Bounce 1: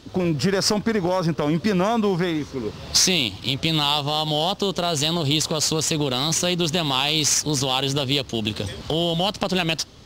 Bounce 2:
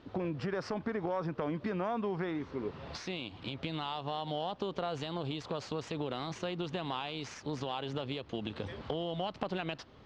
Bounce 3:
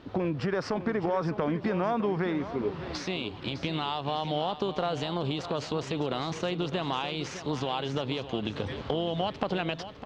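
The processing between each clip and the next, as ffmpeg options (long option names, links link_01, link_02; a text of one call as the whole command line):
ffmpeg -i in.wav -af "acompressor=threshold=-24dB:ratio=4,lowpass=2000,lowshelf=frequency=250:gain=-7,volume=-5dB" out.wav
ffmpeg -i in.wav -af "aecho=1:1:606|1212|1818|2424:0.251|0.098|0.0382|0.0149,volume=6dB" out.wav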